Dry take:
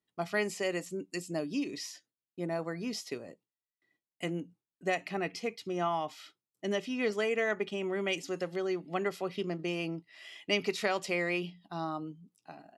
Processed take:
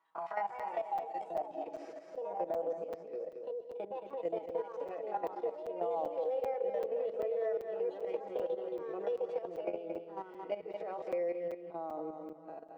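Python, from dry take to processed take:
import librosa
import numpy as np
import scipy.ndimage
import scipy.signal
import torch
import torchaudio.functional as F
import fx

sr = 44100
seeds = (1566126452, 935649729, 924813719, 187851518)

p1 = fx.spec_steps(x, sr, hold_ms=50)
p2 = fx.low_shelf(p1, sr, hz=470.0, db=-8.5)
p3 = fx.echo_feedback(p2, sr, ms=187, feedback_pct=53, wet_db=-16.5)
p4 = fx.echo_pitch(p3, sr, ms=240, semitones=3, count=2, db_per_echo=-3.0)
p5 = fx.sample_hold(p4, sr, seeds[0], rate_hz=7400.0, jitter_pct=0)
p6 = p4 + F.gain(torch.from_numpy(p5), -9.0).numpy()
p7 = fx.filter_sweep_bandpass(p6, sr, from_hz=1000.0, to_hz=490.0, start_s=0.14, end_s=2.75, q=5.5)
p8 = fx.dynamic_eq(p7, sr, hz=770.0, q=2.3, threshold_db=-57.0, ratio=4.0, max_db=6)
p9 = p8 + 0.77 * np.pad(p8, (int(6.2 * sr / 1000.0), 0))[:len(p8)]
p10 = fx.level_steps(p9, sr, step_db=13)
p11 = p10 + fx.echo_single(p10, sr, ms=222, db=-8.5, dry=0)
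p12 = fx.buffer_crackle(p11, sr, first_s=0.59, period_s=0.39, block=256, kind='zero')
p13 = fx.band_squash(p12, sr, depth_pct=70)
y = F.gain(torch.from_numpy(p13), 6.0).numpy()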